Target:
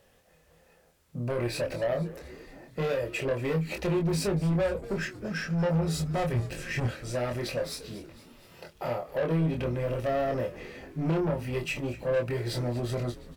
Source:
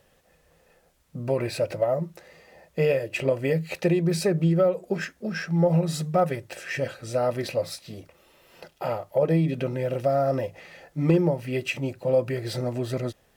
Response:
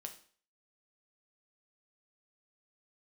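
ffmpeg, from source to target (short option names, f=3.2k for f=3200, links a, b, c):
-filter_complex "[0:a]asplit=3[a][b][c];[a]afade=t=out:st=6.33:d=0.02[d];[b]asubboost=boost=10.5:cutoff=230,afade=t=in:st=6.33:d=0.02,afade=t=out:st=6.87:d=0.02[e];[c]afade=t=in:st=6.87:d=0.02[f];[d][e][f]amix=inputs=3:normalize=0,asoftclip=type=tanh:threshold=-24dB,asplit=2[g][h];[h]adelay=25,volume=-4dB[i];[g][i]amix=inputs=2:normalize=0,asplit=2[j][k];[k]asplit=6[l][m][n][o][p][q];[l]adelay=235,afreqshift=-96,volume=-17.5dB[r];[m]adelay=470,afreqshift=-192,volume=-21.5dB[s];[n]adelay=705,afreqshift=-288,volume=-25.5dB[t];[o]adelay=940,afreqshift=-384,volume=-29.5dB[u];[p]adelay=1175,afreqshift=-480,volume=-33.6dB[v];[q]adelay=1410,afreqshift=-576,volume=-37.6dB[w];[r][s][t][u][v][w]amix=inputs=6:normalize=0[x];[j][x]amix=inputs=2:normalize=0,volume=-2dB"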